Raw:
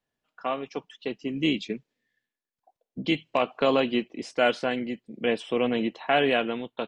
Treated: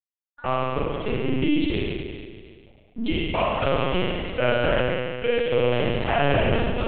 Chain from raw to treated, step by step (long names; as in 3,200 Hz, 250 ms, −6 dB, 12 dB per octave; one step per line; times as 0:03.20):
0:03.25–0:05.86: Butterworth high-pass 340 Hz 96 dB per octave
downward compressor 12 to 1, threshold −27 dBFS, peak gain reduction 10.5 dB
dead-zone distortion −57.5 dBFS
spring reverb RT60 2 s, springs 35 ms, chirp 40 ms, DRR −6.5 dB
linear-prediction vocoder at 8 kHz pitch kept
level +4 dB